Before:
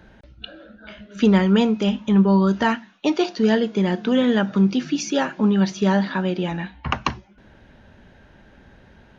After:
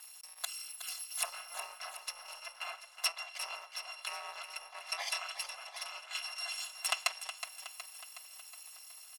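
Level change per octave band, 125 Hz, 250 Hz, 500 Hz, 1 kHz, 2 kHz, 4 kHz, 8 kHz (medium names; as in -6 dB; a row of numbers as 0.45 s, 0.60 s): under -40 dB, under -40 dB, -30.0 dB, -17.0 dB, -11.5 dB, -7.0 dB, no reading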